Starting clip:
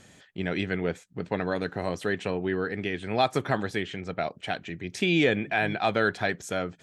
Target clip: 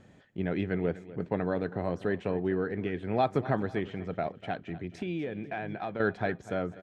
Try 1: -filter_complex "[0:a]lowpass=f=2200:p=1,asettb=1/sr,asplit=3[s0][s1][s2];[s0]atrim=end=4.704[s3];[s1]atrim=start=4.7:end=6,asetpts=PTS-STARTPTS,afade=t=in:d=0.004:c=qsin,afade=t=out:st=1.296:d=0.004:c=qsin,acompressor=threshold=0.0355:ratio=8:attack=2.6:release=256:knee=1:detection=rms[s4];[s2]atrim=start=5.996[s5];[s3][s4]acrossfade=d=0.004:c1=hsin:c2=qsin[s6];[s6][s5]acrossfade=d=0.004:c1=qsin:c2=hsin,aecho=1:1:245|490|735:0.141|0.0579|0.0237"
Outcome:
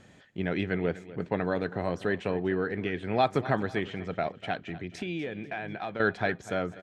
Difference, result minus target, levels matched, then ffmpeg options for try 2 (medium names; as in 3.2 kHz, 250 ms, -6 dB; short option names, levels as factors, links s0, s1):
2 kHz band +3.5 dB
-filter_complex "[0:a]lowpass=f=830:p=1,asettb=1/sr,asplit=3[s0][s1][s2];[s0]atrim=end=4.704[s3];[s1]atrim=start=4.7:end=6,asetpts=PTS-STARTPTS,afade=t=in:d=0.004:c=qsin,afade=t=out:st=1.296:d=0.004:c=qsin,acompressor=threshold=0.0355:ratio=8:attack=2.6:release=256:knee=1:detection=rms[s4];[s2]atrim=start=5.996[s5];[s3][s4]acrossfade=d=0.004:c1=hsin:c2=qsin[s6];[s6][s5]acrossfade=d=0.004:c1=qsin:c2=hsin,aecho=1:1:245|490|735:0.141|0.0579|0.0237"